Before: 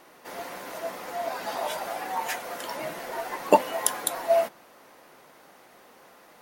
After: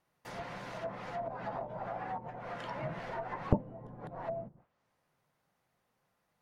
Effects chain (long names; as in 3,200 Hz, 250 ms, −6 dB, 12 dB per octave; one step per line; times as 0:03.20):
noise gate with hold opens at −40 dBFS
treble cut that deepens with the level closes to 310 Hz, closed at −25 dBFS
low shelf with overshoot 200 Hz +13 dB, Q 1.5
level −4.5 dB